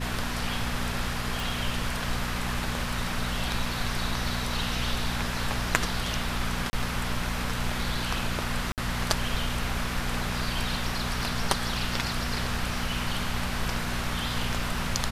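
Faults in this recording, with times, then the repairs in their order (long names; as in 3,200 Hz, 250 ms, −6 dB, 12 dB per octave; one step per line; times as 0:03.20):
mains hum 60 Hz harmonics 4 −34 dBFS
0:01.40: click
0:06.70–0:06.73: drop-out 30 ms
0:08.72–0:08.78: drop-out 58 ms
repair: click removal
hum removal 60 Hz, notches 4
repair the gap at 0:06.70, 30 ms
repair the gap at 0:08.72, 58 ms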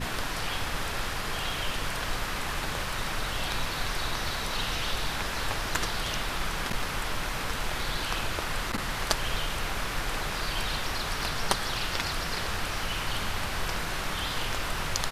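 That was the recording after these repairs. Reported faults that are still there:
none of them is left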